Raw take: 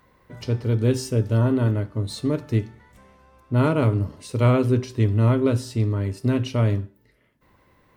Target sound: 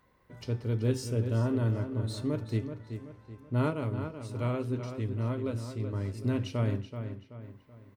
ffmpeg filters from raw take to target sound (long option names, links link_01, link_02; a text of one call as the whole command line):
ffmpeg -i in.wav -filter_complex "[0:a]asettb=1/sr,asplit=3[link_01][link_02][link_03];[link_01]atrim=end=3.704[link_04];[link_02]atrim=start=3.7:end=5.93,asetpts=PTS-STARTPTS,afade=type=in:duration=0.004:curve=qsin,afade=type=out:start_time=2.226:duration=0.004:curve=qsin,flanger=delay=1.5:depth=4.5:regen=79:speed=1.7:shape=triangular[link_05];[link_03]atrim=start=5.926[link_06];[link_04][link_05]acrossfade=duration=0.004:curve1=hsin:curve2=qsin[link_07];[link_07][link_06]acrossfade=duration=0.004:curve1=qsin:curve2=hsin,asplit=2[link_08][link_09];[link_09]adelay=380,lowpass=frequency=3800:poles=1,volume=-8.5dB,asplit=2[link_10][link_11];[link_11]adelay=380,lowpass=frequency=3800:poles=1,volume=0.41,asplit=2[link_12][link_13];[link_13]adelay=380,lowpass=frequency=3800:poles=1,volume=0.41,asplit=2[link_14][link_15];[link_15]adelay=380,lowpass=frequency=3800:poles=1,volume=0.41,asplit=2[link_16][link_17];[link_17]adelay=380,lowpass=frequency=3800:poles=1,volume=0.41[link_18];[link_08][link_10][link_12][link_14][link_16][link_18]amix=inputs=6:normalize=0,volume=-8.5dB" out.wav